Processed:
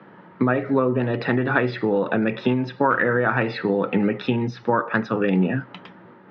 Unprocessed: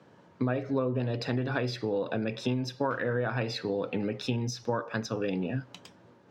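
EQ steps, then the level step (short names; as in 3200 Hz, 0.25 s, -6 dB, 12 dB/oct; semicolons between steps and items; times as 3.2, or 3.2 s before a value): speaker cabinet 120–3400 Hz, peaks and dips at 190 Hz +8 dB, 350 Hz +5 dB, 880 Hz +5 dB, 1300 Hz +8 dB, 1900 Hz +8 dB; +7.0 dB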